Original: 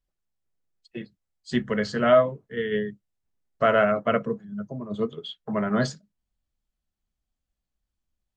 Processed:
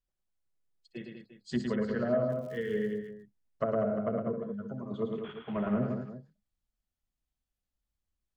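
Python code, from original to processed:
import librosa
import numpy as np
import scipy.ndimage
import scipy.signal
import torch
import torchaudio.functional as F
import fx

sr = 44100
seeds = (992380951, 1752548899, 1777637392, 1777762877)

y = fx.cvsd(x, sr, bps=16000, at=(5.13, 5.78))
y = fx.env_lowpass_down(y, sr, base_hz=470.0, full_db=-19.0)
y = fx.dmg_crackle(y, sr, seeds[0], per_s=100.0, level_db=-38.0, at=(2.28, 2.86), fade=0.02)
y = fx.echo_multitap(y, sr, ms=(61, 109, 195, 349), db=(-15.0, -4.5, -7.5, -13.5))
y = y * librosa.db_to_amplitude(-6.5)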